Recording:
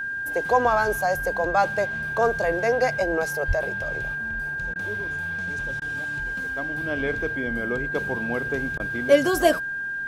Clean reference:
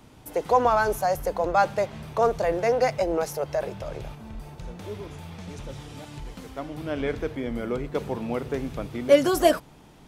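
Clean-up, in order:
notch filter 1,600 Hz, Q 30
0:03.47–0:03.59: high-pass filter 140 Hz 24 dB per octave
repair the gap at 0:04.74/0:05.80/0:08.78, 16 ms

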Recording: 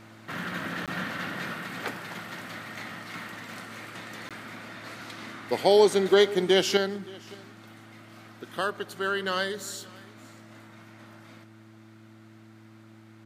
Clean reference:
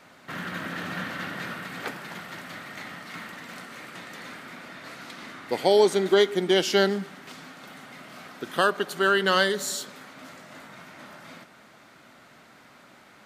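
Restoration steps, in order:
hum removal 110 Hz, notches 3
repair the gap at 0:00.86/0:04.29, 17 ms
echo removal 572 ms −23 dB
level correction +7 dB, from 0:06.77

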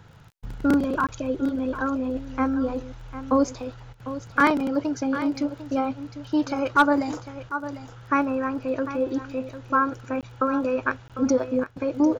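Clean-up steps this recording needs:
clipped peaks rebuilt −9 dBFS
click removal
repair the gap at 0:01.07/0:10.21/0:11.08, 17 ms
echo removal 750 ms −12.5 dB

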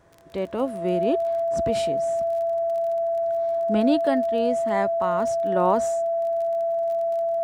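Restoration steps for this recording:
click removal
notch filter 670 Hz, Q 30

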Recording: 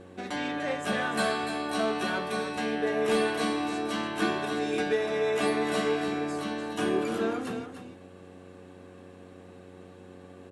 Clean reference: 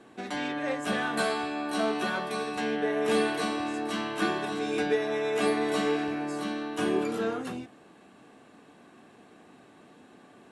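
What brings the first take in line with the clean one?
clipped peaks rebuilt −17.5 dBFS
hum removal 91.7 Hz, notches 6
echo removal 294 ms −9 dB

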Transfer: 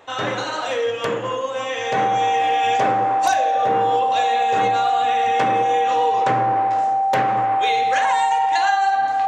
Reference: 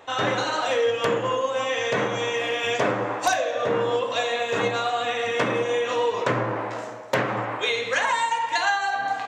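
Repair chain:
notch filter 780 Hz, Q 30

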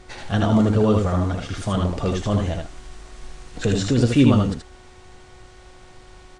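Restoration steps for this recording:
hum removal 368.4 Hz, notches 5
echo removal 78 ms −3.5 dB

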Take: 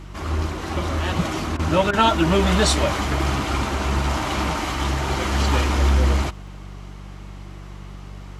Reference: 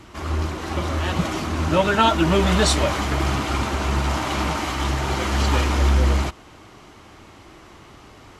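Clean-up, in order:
click removal
hum removal 48.3 Hz, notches 4
repair the gap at 0:01.57/0:01.91, 21 ms

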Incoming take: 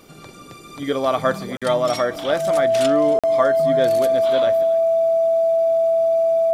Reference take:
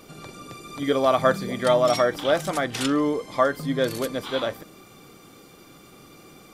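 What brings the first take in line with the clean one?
notch filter 660 Hz, Q 30
repair the gap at 0:01.57/0:03.19, 46 ms
echo removal 273 ms −18.5 dB

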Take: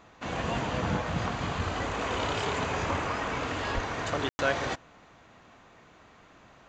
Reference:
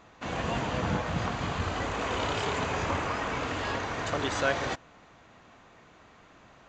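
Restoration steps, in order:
high-pass at the plosives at 0:03.74
ambience match 0:04.29–0:04.39

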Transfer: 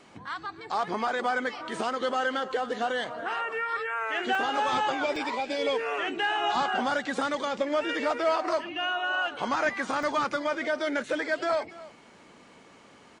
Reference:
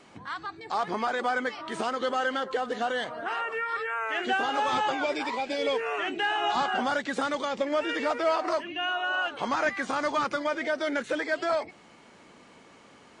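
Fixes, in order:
repair the gap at 0:04.35/0:05.16/0:10.03, 2.2 ms
echo removal 286 ms −18.5 dB

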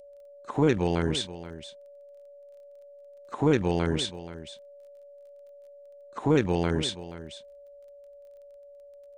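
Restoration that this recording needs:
click removal
notch filter 570 Hz, Q 30
echo removal 479 ms −14.5 dB

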